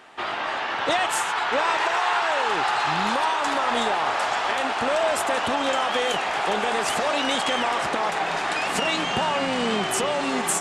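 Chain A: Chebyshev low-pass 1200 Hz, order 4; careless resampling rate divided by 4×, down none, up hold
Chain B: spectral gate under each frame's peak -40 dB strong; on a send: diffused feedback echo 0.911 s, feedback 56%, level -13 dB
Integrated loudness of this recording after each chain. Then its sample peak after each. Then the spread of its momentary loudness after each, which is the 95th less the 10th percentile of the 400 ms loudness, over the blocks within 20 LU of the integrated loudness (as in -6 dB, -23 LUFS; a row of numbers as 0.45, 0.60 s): -26.0, -23.0 LUFS; -12.0, -9.5 dBFS; 3, 2 LU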